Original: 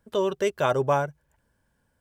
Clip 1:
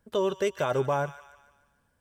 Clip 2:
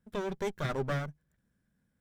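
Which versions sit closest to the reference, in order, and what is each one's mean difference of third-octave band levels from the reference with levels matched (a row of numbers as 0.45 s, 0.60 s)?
1, 2; 3.0 dB, 5.0 dB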